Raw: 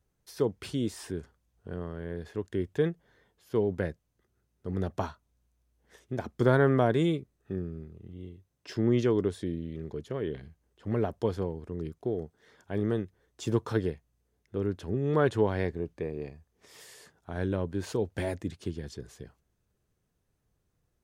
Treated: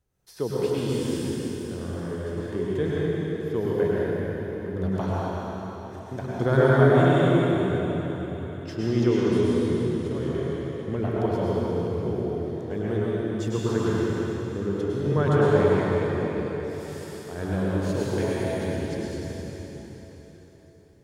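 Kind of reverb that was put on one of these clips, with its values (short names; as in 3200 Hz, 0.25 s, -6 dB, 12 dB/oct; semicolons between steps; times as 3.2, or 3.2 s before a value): plate-style reverb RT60 4.3 s, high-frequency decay 0.9×, pre-delay 90 ms, DRR -7.5 dB; gain -1.5 dB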